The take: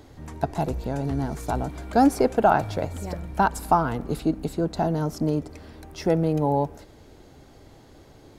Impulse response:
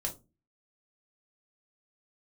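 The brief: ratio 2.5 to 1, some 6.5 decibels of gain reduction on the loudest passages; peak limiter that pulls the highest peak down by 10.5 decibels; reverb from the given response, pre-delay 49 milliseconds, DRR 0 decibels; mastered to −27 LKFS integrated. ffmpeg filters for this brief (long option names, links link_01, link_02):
-filter_complex "[0:a]acompressor=threshold=-23dB:ratio=2.5,alimiter=limit=-20.5dB:level=0:latency=1,asplit=2[link_01][link_02];[1:a]atrim=start_sample=2205,adelay=49[link_03];[link_02][link_03]afir=irnorm=-1:irlink=0,volume=-2dB[link_04];[link_01][link_04]amix=inputs=2:normalize=0,volume=1dB"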